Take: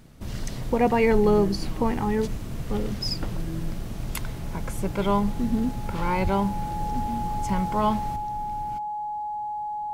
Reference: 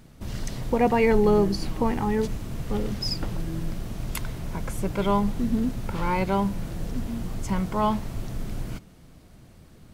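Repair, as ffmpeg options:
ffmpeg -i in.wav -filter_complex "[0:a]bandreject=frequency=840:width=30,asplit=3[link_01][link_02][link_03];[link_01]afade=type=out:start_time=6.23:duration=0.02[link_04];[link_02]highpass=frequency=140:width=0.5412,highpass=frequency=140:width=1.3066,afade=type=in:start_time=6.23:duration=0.02,afade=type=out:start_time=6.35:duration=0.02[link_05];[link_03]afade=type=in:start_time=6.35:duration=0.02[link_06];[link_04][link_05][link_06]amix=inputs=3:normalize=0,asetnsamples=nb_out_samples=441:pad=0,asendcmd='8.16 volume volume 8dB',volume=0dB" out.wav

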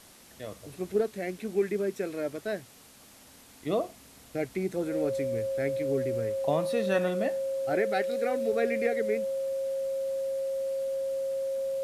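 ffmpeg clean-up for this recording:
ffmpeg -i in.wav -af "bandreject=frequency=540:width=30,afwtdn=0.0022" out.wav

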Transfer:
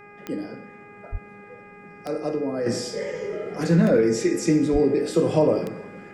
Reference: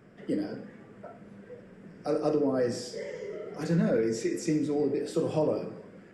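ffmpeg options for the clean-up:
ffmpeg -i in.wav -filter_complex "[0:a]adeclick=threshold=4,bandreject=frequency=410:width_type=h:width=4,bandreject=frequency=820:width_type=h:width=4,bandreject=frequency=1230:width_type=h:width=4,bandreject=frequency=1640:width_type=h:width=4,bandreject=frequency=2050:width_type=h:width=4,bandreject=frequency=2460:width_type=h:width=4,asplit=3[link_01][link_02][link_03];[link_01]afade=type=out:start_time=1.11:duration=0.02[link_04];[link_02]highpass=frequency=140:width=0.5412,highpass=frequency=140:width=1.3066,afade=type=in:start_time=1.11:duration=0.02,afade=type=out:start_time=1.23:duration=0.02[link_05];[link_03]afade=type=in:start_time=1.23:duration=0.02[link_06];[link_04][link_05][link_06]amix=inputs=3:normalize=0,asplit=3[link_07][link_08][link_09];[link_07]afade=type=out:start_time=4.72:duration=0.02[link_10];[link_08]highpass=frequency=140:width=0.5412,highpass=frequency=140:width=1.3066,afade=type=in:start_time=4.72:duration=0.02,afade=type=out:start_time=4.84:duration=0.02[link_11];[link_09]afade=type=in:start_time=4.84:duration=0.02[link_12];[link_10][link_11][link_12]amix=inputs=3:normalize=0,asetnsamples=nb_out_samples=441:pad=0,asendcmd='2.66 volume volume -8dB',volume=0dB" out.wav

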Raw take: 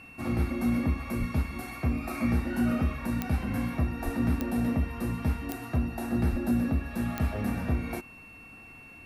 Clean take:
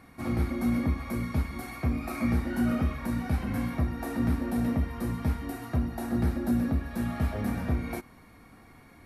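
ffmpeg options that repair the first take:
ffmpeg -i in.wav -filter_complex "[0:a]adeclick=threshold=4,bandreject=frequency=2700:width=30,asplit=3[link_01][link_02][link_03];[link_01]afade=type=out:start_time=1.19:duration=0.02[link_04];[link_02]highpass=frequency=140:width=0.5412,highpass=frequency=140:width=1.3066,afade=type=in:start_time=1.19:duration=0.02,afade=type=out:start_time=1.31:duration=0.02[link_05];[link_03]afade=type=in:start_time=1.31:duration=0.02[link_06];[link_04][link_05][link_06]amix=inputs=3:normalize=0,asplit=3[link_07][link_08][link_09];[link_07]afade=type=out:start_time=4.04:duration=0.02[link_10];[link_08]highpass=frequency=140:width=0.5412,highpass=frequency=140:width=1.3066,afade=type=in:start_time=4.04:duration=0.02,afade=type=out:start_time=4.16:duration=0.02[link_11];[link_09]afade=type=in:start_time=4.16:duration=0.02[link_12];[link_10][link_11][link_12]amix=inputs=3:normalize=0,asplit=3[link_13][link_14][link_15];[link_13]afade=type=out:start_time=6.31:duration=0.02[link_16];[link_14]highpass=frequency=140:width=0.5412,highpass=frequency=140:width=1.3066,afade=type=in:start_time=6.31:duration=0.02,afade=type=out:start_time=6.43:duration=0.02[link_17];[link_15]afade=type=in:start_time=6.43:duration=0.02[link_18];[link_16][link_17][link_18]amix=inputs=3:normalize=0" out.wav

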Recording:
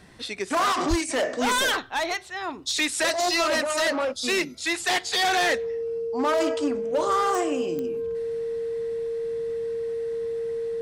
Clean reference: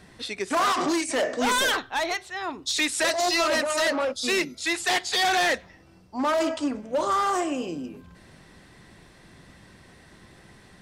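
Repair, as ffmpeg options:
ffmpeg -i in.wav -filter_complex "[0:a]adeclick=threshold=4,bandreject=frequency=460:width=30,asplit=3[link_01][link_02][link_03];[link_01]afade=type=out:start_time=0.89:duration=0.02[link_04];[link_02]highpass=frequency=140:width=0.5412,highpass=frequency=140:width=1.3066,afade=type=in:start_time=0.89:duration=0.02,afade=type=out:start_time=1.01:duration=0.02[link_05];[link_03]afade=type=in:start_time=1.01:duration=0.02[link_06];[link_04][link_05][link_06]amix=inputs=3:normalize=0" out.wav

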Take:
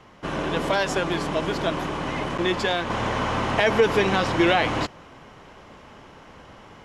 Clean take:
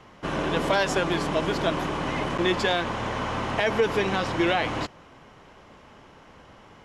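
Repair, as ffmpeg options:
ffmpeg -i in.wav -af "asetnsamples=nb_out_samples=441:pad=0,asendcmd='2.9 volume volume -4dB',volume=0dB" out.wav

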